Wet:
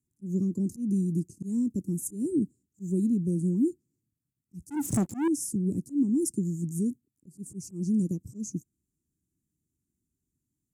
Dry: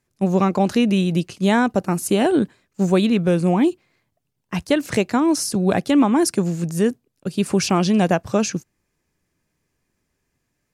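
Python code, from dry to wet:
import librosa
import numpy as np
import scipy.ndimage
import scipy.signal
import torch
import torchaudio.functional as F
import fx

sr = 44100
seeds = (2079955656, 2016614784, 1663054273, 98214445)

y = fx.transient(x, sr, attack_db=-2, sustain_db=-6, at=(7.61, 8.2), fade=0.02)
y = scipy.signal.sosfilt(scipy.signal.ellip(3, 1.0, 40, [310.0, 7200.0], 'bandstop', fs=sr, output='sos'), y)
y = fx.leveller(y, sr, passes=3, at=(4.7, 5.28))
y = scipy.signal.sosfilt(scipy.signal.butter(2, 44.0, 'highpass', fs=sr, output='sos'), y)
y = fx.auto_swell(y, sr, attack_ms=148.0)
y = y * 10.0 ** (-6.5 / 20.0)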